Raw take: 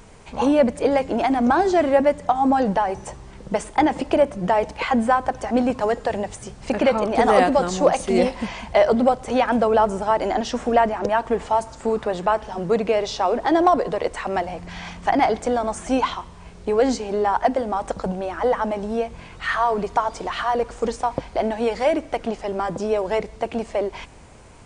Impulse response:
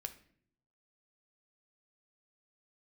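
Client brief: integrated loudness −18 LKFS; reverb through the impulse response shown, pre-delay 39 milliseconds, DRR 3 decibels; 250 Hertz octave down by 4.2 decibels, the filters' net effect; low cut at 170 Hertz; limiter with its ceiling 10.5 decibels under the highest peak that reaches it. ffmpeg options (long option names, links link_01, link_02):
-filter_complex "[0:a]highpass=170,equalizer=frequency=250:width_type=o:gain=-4,alimiter=limit=-13.5dB:level=0:latency=1,asplit=2[link_01][link_02];[1:a]atrim=start_sample=2205,adelay=39[link_03];[link_02][link_03]afir=irnorm=-1:irlink=0,volume=0dB[link_04];[link_01][link_04]amix=inputs=2:normalize=0,volume=5dB"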